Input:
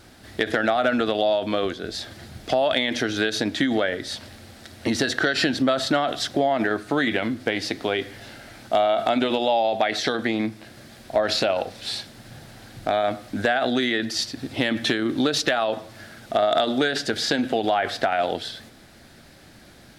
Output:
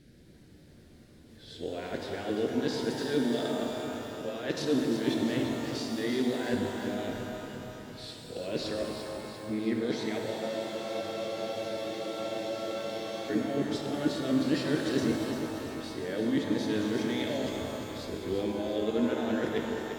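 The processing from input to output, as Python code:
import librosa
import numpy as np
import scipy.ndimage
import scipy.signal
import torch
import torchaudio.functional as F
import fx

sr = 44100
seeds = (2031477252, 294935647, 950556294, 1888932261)

p1 = np.flip(x).copy()
p2 = fx.curve_eq(p1, sr, hz=(460.0, 840.0, 1900.0), db=(0, -22, -10))
p3 = p2 + fx.echo_feedback(p2, sr, ms=344, feedback_pct=58, wet_db=-8.5, dry=0)
p4 = fx.spec_freeze(p3, sr, seeds[0], at_s=10.28, hold_s=3.02)
p5 = fx.rev_shimmer(p4, sr, seeds[1], rt60_s=2.4, semitones=12, shimmer_db=-8, drr_db=2.0)
y = p5 * librosa.db_to_amplitude(-6.0)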